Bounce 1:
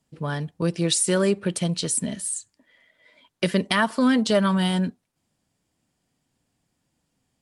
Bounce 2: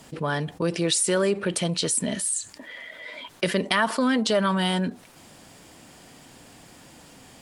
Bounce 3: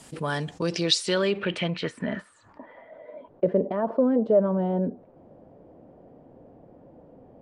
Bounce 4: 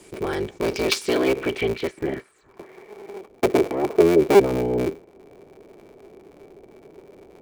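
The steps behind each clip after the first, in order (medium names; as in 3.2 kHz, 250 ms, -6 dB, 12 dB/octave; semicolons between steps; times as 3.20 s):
tone controls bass -8 dB, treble -3 dB; level flattener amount 50%; trim -2 dB
low-pass sweep 9.9 kHz -> 550 Hz, 0.17–3.22 s; trim -2 dB
cycle switcher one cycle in 3, inverted; small resonant body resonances 390/2300 Hz, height 15 dB, ringing for 40 ms; trim -2.5 dB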